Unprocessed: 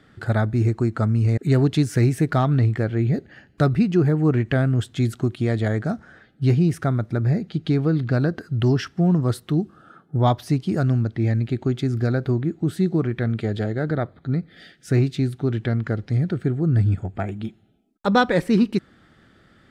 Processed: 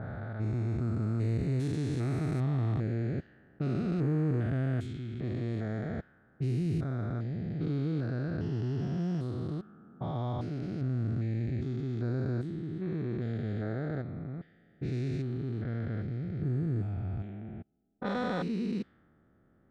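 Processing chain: stepped spectrum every 0.4 s; low-pass opened by the level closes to 910 Hz, open at -17.5 dBFS; gain -8.5 dB

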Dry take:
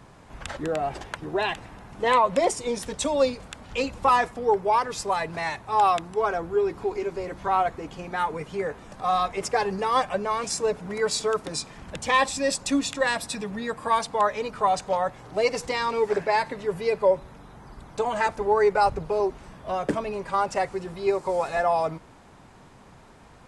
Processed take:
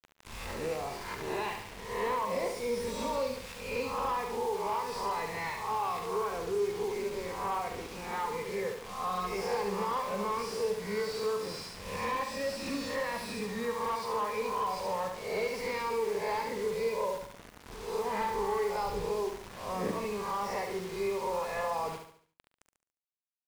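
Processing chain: spectral swells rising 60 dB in 0.62 s; ripple EQ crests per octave 0.88, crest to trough 10 dB; compressor 4:1, threshold -21 dBFS, peak gain reduction 9 dB; bit-crush 6-bit; doubler 44 ms -12.5 dB; on a send: feedback echo 71 ms, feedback 43%, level -7 dB; on the sum: slew limiter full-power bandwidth 110 Hz; gain -9 dB

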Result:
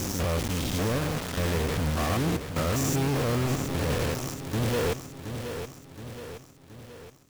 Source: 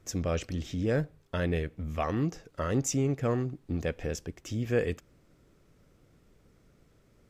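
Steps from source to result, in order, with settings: stepped spectrum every 0.2 s; companded quantiser 2-bit; lo-fi delay 0.722 s, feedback 55%, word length 10-bit, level -8.5 dB

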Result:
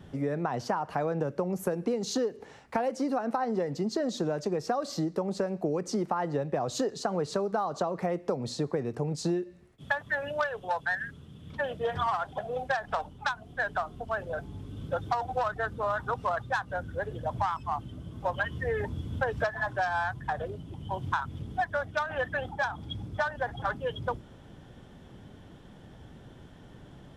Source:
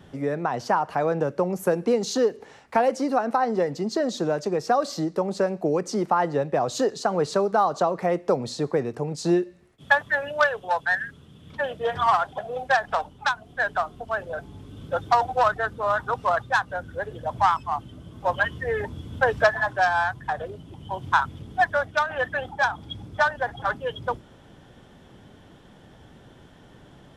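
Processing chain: low shelf 270 Hz +6 dB; compressor, threshold -22 dBFS, peak gain reduction 10 dB; gain -3.5 dB

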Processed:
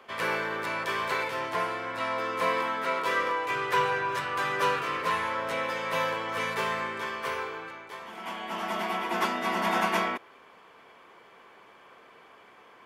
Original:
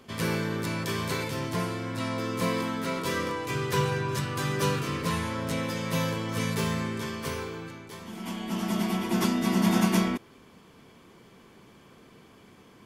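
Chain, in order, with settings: three-band isolator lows -23 dB, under 500 Hz, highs -15 dB, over 2800 Hz; gain +6.5 dB

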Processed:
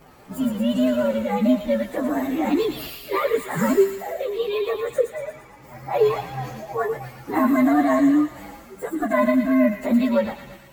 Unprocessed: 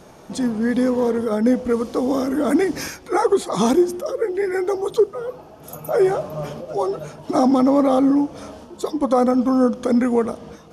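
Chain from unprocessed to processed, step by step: inharmonic rescaling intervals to 129%; thin delay 0.115 s, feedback 59%, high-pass 2300 Hz, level -3 dB

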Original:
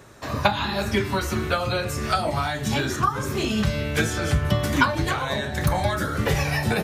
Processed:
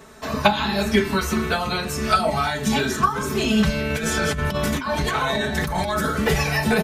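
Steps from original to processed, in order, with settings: comb 4.6 ms, depth 85%; 3.9–6.12 negative-ratio compressor -24 dBFS, ratio -1; gain +1 dB

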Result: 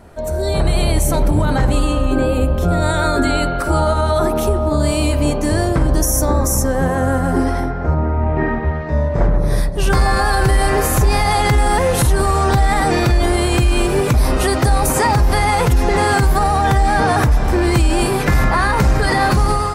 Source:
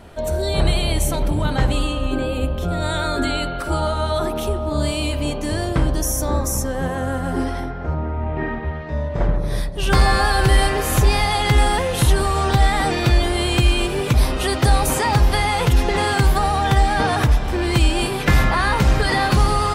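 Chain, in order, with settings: bell 3200 Hz -8.5 dB 0.84 oct; limiter -13 dBFS, peak gain reduction 7.5 dB; AGC gain up to 7 dB

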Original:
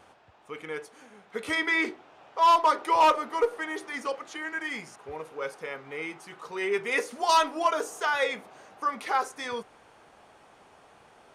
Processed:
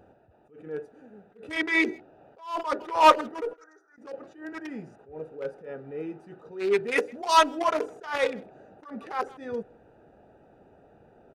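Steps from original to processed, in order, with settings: Wiener smoothing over 41 samples; 3.53–3.98 double band-pass 2900 Hz, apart 2.1 oct; speakerphone echo 0.16 s, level -27 dB; attack slew limiter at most 140 dB/s; gain +6.5 dB

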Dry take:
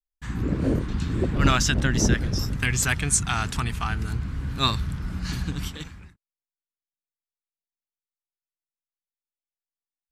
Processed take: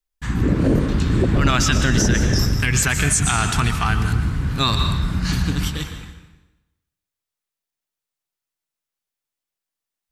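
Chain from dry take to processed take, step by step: plate-style reverb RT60 1 s, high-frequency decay 0.9×, pre-delay 0.105 s, DRR 8.5 dB; maximiser +15 dB; gain -7 dB

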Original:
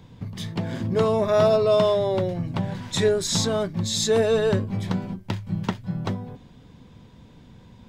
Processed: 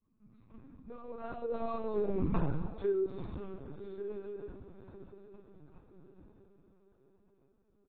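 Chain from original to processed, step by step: median filter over 15 samples; Doppler pass-by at 2.29, 29 m/s, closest 2.8 m; HPF 160 Hz 12 dB/oct; high shelf 2500 Hz -10 dB; notches 60/120/180/240/300/360/420/480 Hz; comb 0.8 ms, depth 67%; dynamic EQ 440 Hz, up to +7 dB, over -53 dBFS, Q 1.6; grains, spray 31 ms, pitch spread up and down by 0 st; diffused feedback echo 0.963 s, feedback 44%, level -14.5 dB; shoebox room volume 810 m³, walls furnished, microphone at 1.6 m; LPC vocoder at 8 kHz pitch kept; AAC 24 kbps 24000 Hz

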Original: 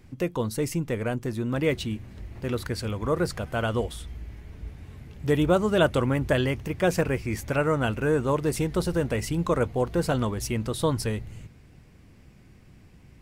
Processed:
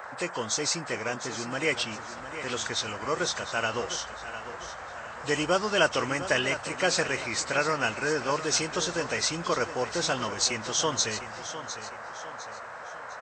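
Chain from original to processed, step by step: nonlinear frequency compression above 2400 Hz 1.5:1; tilt +4.5 dB/oct; on a send: feedback echo 0.705 s, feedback 41%, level -12 dB; on the sum: band noise 500–1700 Hz -41 dBFS

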